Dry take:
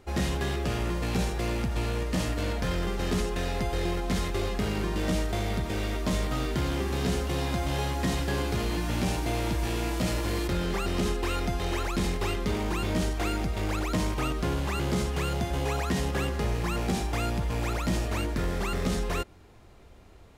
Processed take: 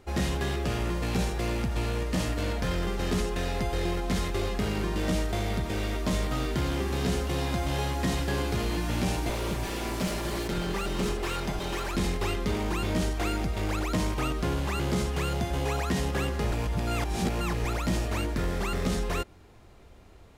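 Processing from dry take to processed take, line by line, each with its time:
9.29–11.95 minimum comb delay 5.1 ms
16.52–17.65 reverse

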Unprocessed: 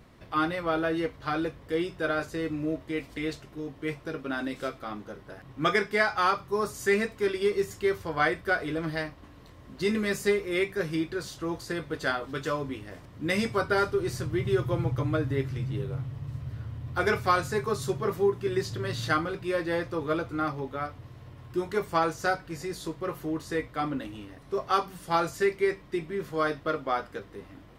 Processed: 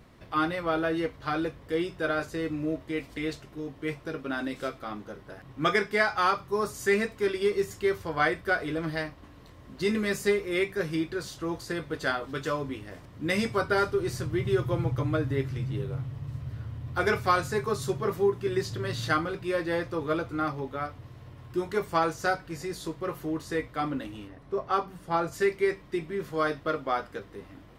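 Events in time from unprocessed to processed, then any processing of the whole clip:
24.27–25.31 high shelf 3400 Hz -> 2200 Hz -11.5 dB

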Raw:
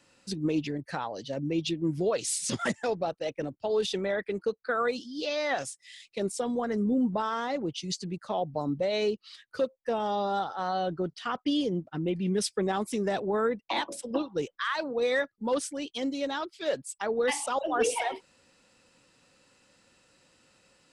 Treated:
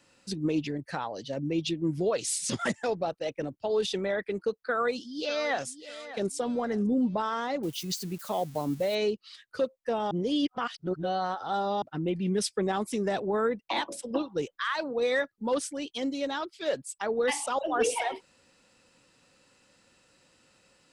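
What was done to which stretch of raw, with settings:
4.61–5.66 echo throw 0.6 s, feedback 35%, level -14 dB
7.63–8.95 switching spikes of -35 dBFS
10.11–11.82 reverse

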